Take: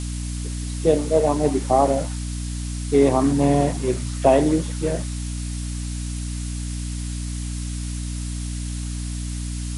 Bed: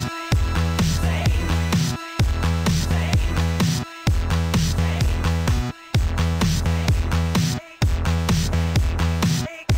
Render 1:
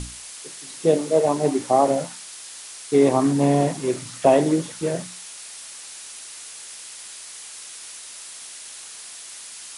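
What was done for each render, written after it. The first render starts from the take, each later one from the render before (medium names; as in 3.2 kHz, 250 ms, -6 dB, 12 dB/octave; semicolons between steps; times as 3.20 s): hum notches 60/120/180/240/300 Hz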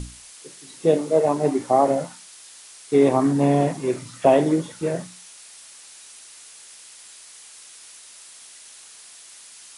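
noise print and reduce 6 dB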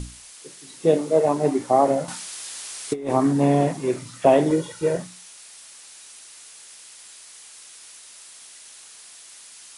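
2.08–3.10 s: compressor with a negative ratio -23 dBFS, ratio -0.5; 4.50–4.97 s: comb 2.1 ms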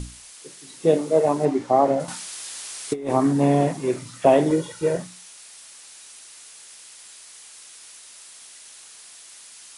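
1.45–2.00 s: distance through air 71 m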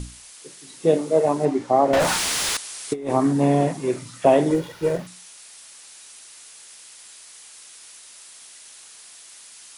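1.93–2.57 s: overdrive pedal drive 40 dB, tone 3.3 kHz, clips at -11.5 dBFS; 4.54–5.07 s: sliding maximum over 5 samples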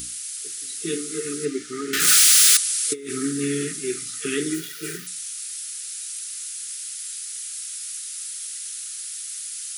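FFT band-reject 460–1200 Hz; RIAA curve recording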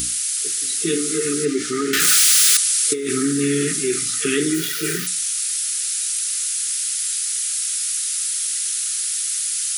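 level flattener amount 50%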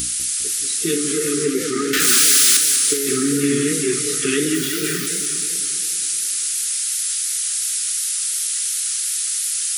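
modulated delay 201 ms, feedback 60%, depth 207 cents, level -7.5 dB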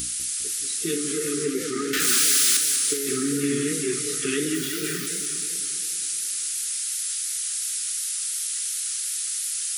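trim -6 dB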